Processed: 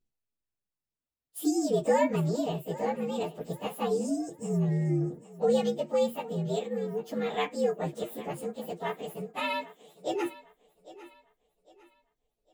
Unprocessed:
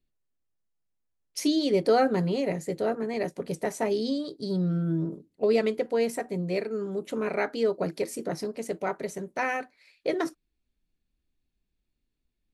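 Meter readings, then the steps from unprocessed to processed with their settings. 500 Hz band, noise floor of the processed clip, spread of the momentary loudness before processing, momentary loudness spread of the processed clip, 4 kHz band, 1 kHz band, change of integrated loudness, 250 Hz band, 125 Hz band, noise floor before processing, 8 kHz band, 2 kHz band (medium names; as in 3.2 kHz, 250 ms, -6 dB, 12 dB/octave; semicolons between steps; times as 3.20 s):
-2.5 dB, under -85 dBFS, 9 LU, 11 LU, -3.5 dB, -1.5 dB, -2.0 dB, -2.5 dB, +0.5 dB, -80 dBFS, -1.5 dB, -5.0 dB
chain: frequency axis rescaled in octaves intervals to 119%; thinning echo 803 ms, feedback 35%, high-pass 200 Hz, level -17 dB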